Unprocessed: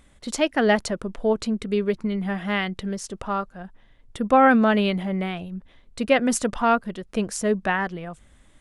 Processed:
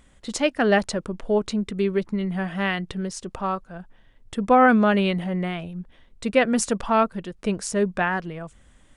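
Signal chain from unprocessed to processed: speed mistake 25 fps video run at 24 fps

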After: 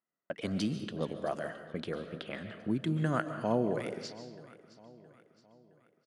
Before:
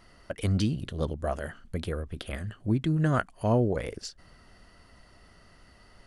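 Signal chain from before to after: high-pass 150 Hz 24 dB/octave; gate -51 dBFS, range -34 dB; level-controlled noise filter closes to 2.2 kHz, open at -25.5 dBFS; in parallel at -3 dB: compression, threshold -36 dBFS, peak gain reduction 15.5 dB; on the sum: feedback delay 667 ms, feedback 46%, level -19 dB; on a send at -9 dB: reverberation RT60 0.90 s, pre-delay 100 ms; on the sum: trim -5.5 dB

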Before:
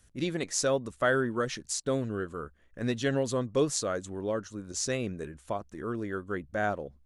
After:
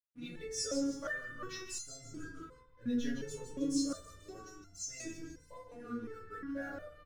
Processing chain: resonances exaggerated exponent 1.5; on a send: frequency-shifting echo 158 ms, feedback 41%, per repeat -120 Hz, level -7.5 dB; on the sum: crossover distortion -52 dBFS; high-order bell 560 Hz -9 dB 2.5 oct; FDN reverb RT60 0.65 s, low-frequency decay 1×, high-frequency decay 0.4×, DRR -4 dB; resonator arpeggio 2.8 Hz 240–690 Hz; trim +5 dB

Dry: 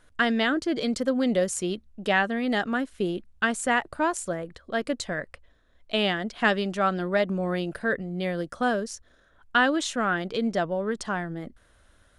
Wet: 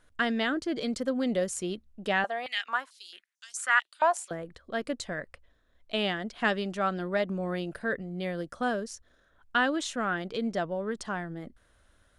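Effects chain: 2.24–4.31 s: step-sequenced high-pass 4.5 Hz 740–6000 Hz; trim -4.5 dB

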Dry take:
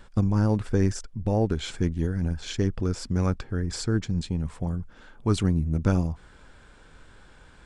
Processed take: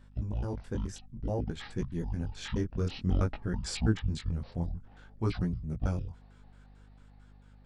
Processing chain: pitch shift switched off and on -11 st, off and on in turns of 109 ms; Doppler pass-by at 3.54 s, 9 m/s, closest 12 m; chorus 0.55 Hz, delay 16.5 ms, depth 7.2 ms; hum 50 Hz, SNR 22 dB

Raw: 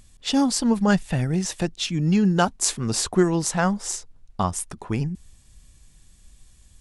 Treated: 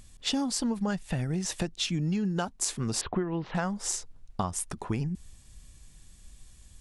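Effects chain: 3.01–3.55 s: steep low-pass 3.3 kHz 36 dB/octave; compression 10:1, threshold -26 dBFS, peak gain reduction 13.5 dB

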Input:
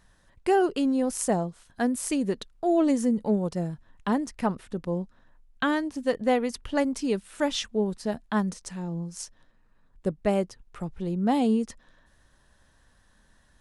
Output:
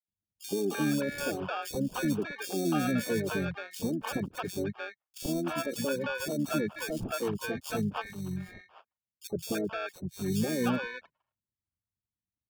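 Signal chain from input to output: resonances exaggerated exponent 3; high-pass 88 Hz 24 dB/octave; gate with hold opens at -55 dBFS; low-pass 8.9 kHz 24 dB/octave; peaking EQ 6.8 kHz -6.5 dB 1.3 oct; touch-sensitive flanger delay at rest 11.1 ms, full sweep at -25.5 dBFS; harmony voices -12 st -8 dB, -5 st -8 dB, +12 st -16 dB; peak limiter -18 dBFS, peak gain reduction 7 dB; sample-and-hold 24×; three bands offset in time highs, lows, mids 90/330 ms, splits 560/3200 Hz; speed mistake 44.1 kHz file played as 48 kHz; trim -2 dB

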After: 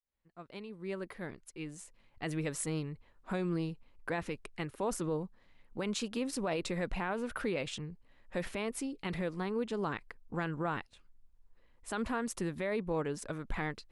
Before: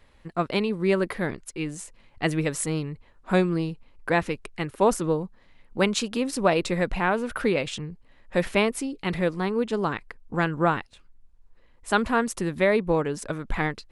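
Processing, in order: fade-in on the opening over 2.72 s; peak limiter -17.5 dBFS, peak gain reduction 10.5 dB; trim -7.5 dB

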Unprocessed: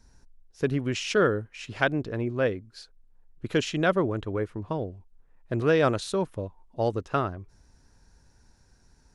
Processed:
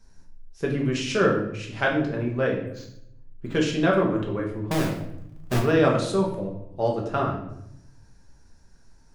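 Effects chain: 4.71–5.59 s: square wave that keeps the level; simulated room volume 190 m³, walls mixed, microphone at 1.2 m; 2.67–3.55 s: decimation joined by straight lines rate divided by 4×; trim -2 dB

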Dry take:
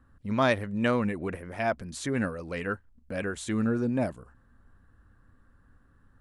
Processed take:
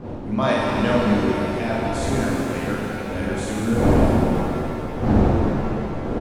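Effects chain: wind noise 360 Hz -30 dBFS; peaking EQ 1.8 kHz -3.5 dB 0.77 oct; doubling 44 ms -3.5 dB; vibrato 9.3 Hz 13 cents; pitch-shifted reverb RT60 3.1 s, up +7 st, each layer -8 dB, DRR -3 dB

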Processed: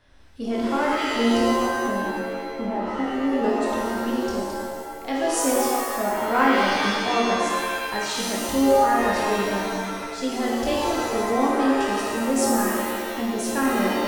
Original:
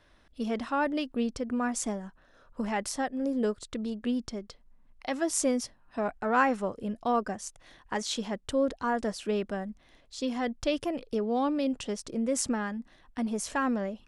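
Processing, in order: 1.39–3.27 s: low-pass that closes with the level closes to 750 Hz, closed at -27 dBFS; flutter echo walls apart 4.4 m, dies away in 0.23 s; pitch-shifted reverb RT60 1.6 s, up +7 st, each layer -2 dB, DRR -2 dB

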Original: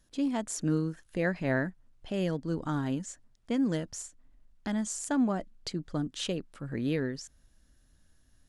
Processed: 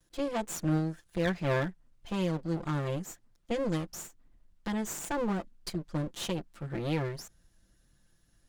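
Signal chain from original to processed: comb filter that takes the minimum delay 5.8 ms

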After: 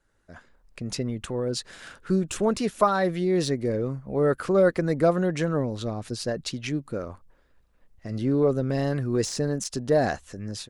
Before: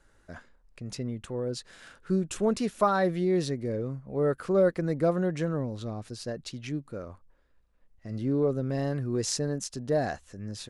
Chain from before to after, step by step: de-esser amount 75%; harmonic-percussive split harmonic -5 dB; level rider gain up to 14 dB; trim -5.5 dB

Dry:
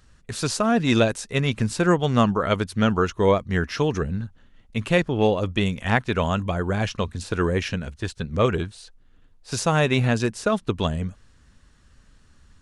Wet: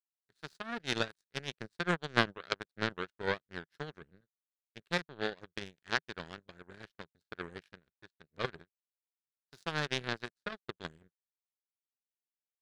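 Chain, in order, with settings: power-law waveshaper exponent 3; fifteen-band graphic EQ 160 Hz +7 dB, 400 Hz +7 dB, 1.6 kHz +11 dB, 4 kHz +10 dB; trim -6 dB

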